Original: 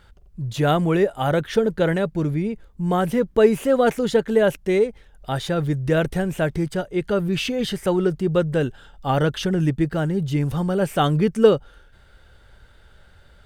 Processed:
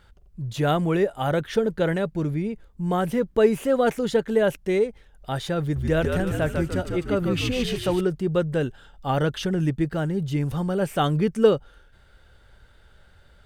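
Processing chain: 5.61–8.01 frequency-shifting echo 0.148 s, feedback 48%, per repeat -72 Hz, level -4 dB; gain -3 dB

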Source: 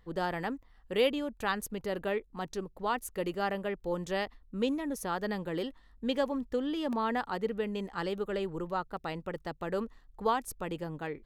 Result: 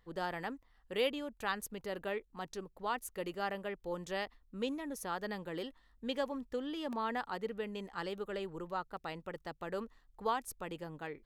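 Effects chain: low shelf 500 Hz -5 dB; gain -3.5 dB

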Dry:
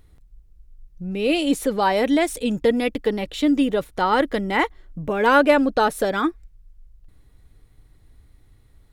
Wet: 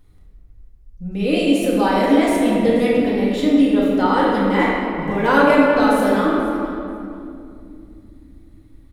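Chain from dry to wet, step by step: feedback echo 0.483 s, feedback 17%, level -17 dB; reverb RT60 2.5 s, pre-delay 3 ms, DRR -6.5 dB; gain -5 dB

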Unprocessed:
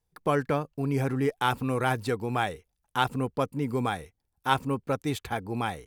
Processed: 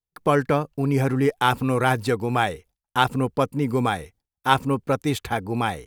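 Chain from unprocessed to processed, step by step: gate with hold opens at -56 dBFS; gain +6 dB

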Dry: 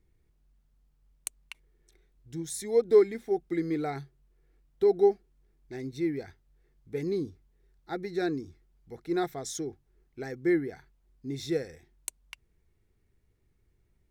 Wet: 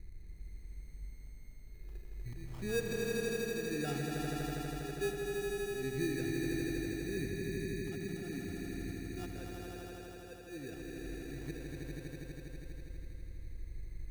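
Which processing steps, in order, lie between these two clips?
tilt -3.5 dB/oct; compressor 2.5:1, threshold -48 dBFS, peak gain reduction 24 dB; auto swell 0.328 s; 9.29–10.47 vowel filter e; sample-and-hold 21×; swelling echo 81 ms, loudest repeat 5, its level -4 dB; gain +4.5 dB

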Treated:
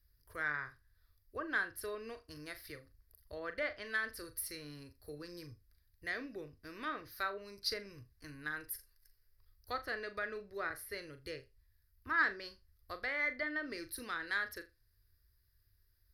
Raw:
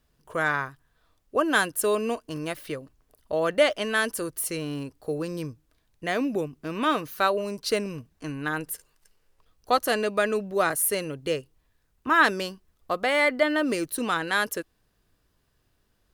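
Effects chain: treble ducked by the level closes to 2100 Hz, closed at -19 dBFS; EQ curve 100 Hz 0 dB, 170 Hz -25 dB, 360 Hz -17 dB, 860 Hz -23 dB, 1900 Hz -6 dB, 2900 Hz -20 dB, 4900 Hz -1 dB, 7200 Hz -22 dB, 12000 Hz +4 dB; added harmonics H 3 -23 dB, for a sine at -20.5 dBFS; flutter echo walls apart 6.9 m, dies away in 0.22 s; gain +2 dB; Opus 96 kbps 48000 Hz

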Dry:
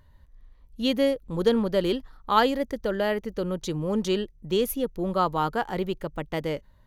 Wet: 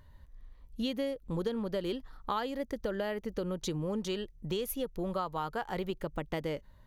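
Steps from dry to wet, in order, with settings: 4.04–5.9 dynamic EQ 270 Hz, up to -5 dB, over -38 dBFS, Q 1.1; compressor 6:1, threshold -31 dBFS, peak gain reduction 15.5 dB

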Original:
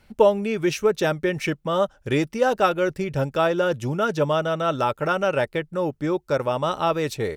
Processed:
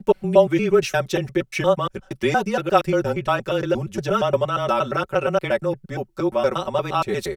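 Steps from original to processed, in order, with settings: slices in reverse order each 0.117 s, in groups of 2; frequency shift -22 Hz; comb 5.3 ms, depth 86%; gain -1 dB

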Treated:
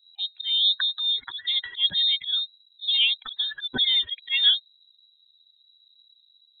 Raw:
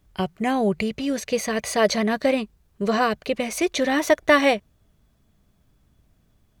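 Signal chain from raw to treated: spectral contrast raised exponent 2.2; inverted band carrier 3900 Hz; auto swell 0.132 s

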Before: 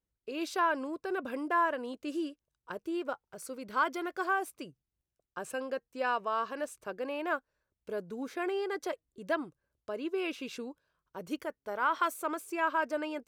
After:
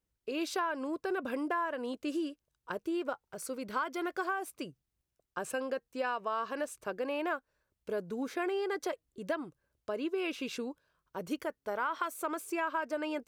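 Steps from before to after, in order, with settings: compressor 6:1, threshold -33 dBFS, peak gain reduction 10 dB; gain +3 dB

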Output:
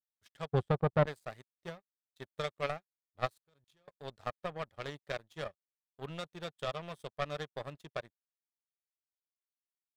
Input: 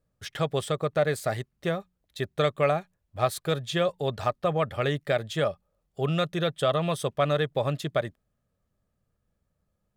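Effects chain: 0.52–1.06 tilt -4 dB/oct; 3.3–3.88 level quantiser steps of 20 dB; power-law curve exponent 2; gain -4 dB

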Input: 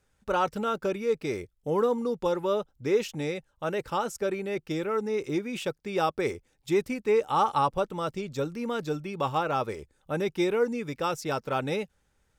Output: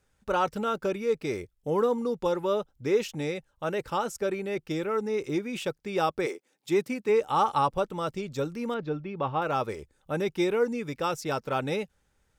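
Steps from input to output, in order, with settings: 6.25–7.08 HPF 330 Hz -> 89 Hz 24 dB/oct; 8.74–9.42 air absorption 310 m

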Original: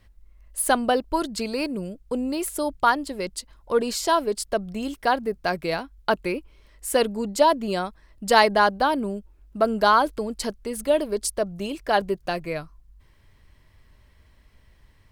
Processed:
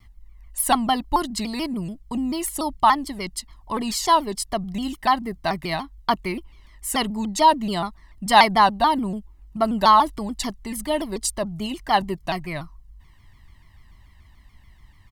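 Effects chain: comb 1 ms, depth 87%; shaped vibrato saw down 6.9 Hz, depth 160 cents

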